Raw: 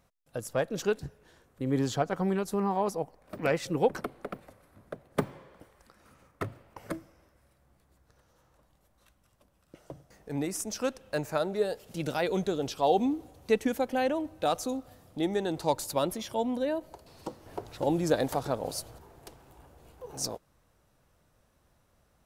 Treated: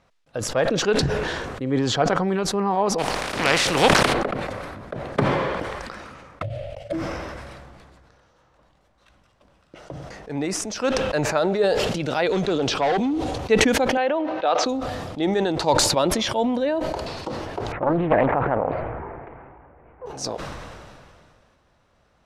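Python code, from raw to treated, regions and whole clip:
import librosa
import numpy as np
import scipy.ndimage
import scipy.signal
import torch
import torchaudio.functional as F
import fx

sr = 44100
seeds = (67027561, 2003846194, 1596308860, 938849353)

y = fx.spec_flatten(x, sr, power=0.44, at=(2.98, 4.12), fade=0.02)
y = fx.peak_eq(y, sr, hz=9600.0, db=4.5, octaves=0.34, at=(2.98, 4.12), fade=0.02)
y = fx.pre_swell(y, sr, db_per_s=74.0, at=(2.98, 4.12), fade=0.02)
y = fx.chain(y, sr, fx.median_filter(points=3),
    fx.curve_eq(hz=(120.0, 220.0, 400.0, 600.0, 970.0, 1600.0, 3100.0, 5600.0, 10000.0, 14000.0), db=(0, -19, -23, 6, -29, -18, -4, -10, -3, -9)),
    fx.transient(attack_db=5, sustain_db=-9), at=(6.42, 6.93))
y = fx.chain(y, sr, fx.lowpass(hz=12000.0, slope=24),
    fx.clip_hard(threshold_db=-24.0),
    fx.band_squash(depth_pct=70), at=(12.29, 13.38))
y = fx.chain(y, sr, fx.bandpass_edges(low_hz=390.0, high_hz=3700.0),
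    fx.air_absorb(metres=56.0), at=(13.97, 14.66))
y = fx.chain(y, sr, fx.ellip_lowpass(hz=2200.0, order=4, stop_db=60),
    fx.doppler_dist(depth_ms=0.67), at=(17.72, 20.06))
y = scipy.signal.sosfilt(scipy.signal.butter(2, 4700.0, 'lowpass', fs=sr, output='sos'), y)
y = fx.low_shelf(y, sr, hz=330.0, db=-5.5)
y = fx.sustainer(y, sr, db_per_s=26.0)
y = y * 10.0 ** (8.0 / 20.0)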